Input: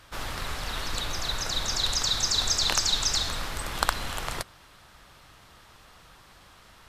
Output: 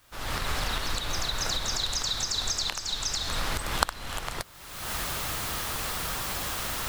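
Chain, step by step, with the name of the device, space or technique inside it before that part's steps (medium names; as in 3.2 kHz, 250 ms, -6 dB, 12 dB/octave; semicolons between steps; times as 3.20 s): cheap recorder with automatic gain (white noise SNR 24 dB; recorder AGC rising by 47 dB/s); trim -11.5 dB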